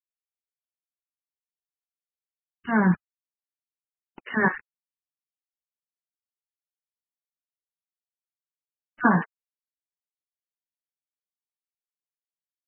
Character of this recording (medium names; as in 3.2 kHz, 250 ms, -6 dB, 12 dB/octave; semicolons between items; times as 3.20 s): a quantiser's noise floor 6-bit, dither none; MP3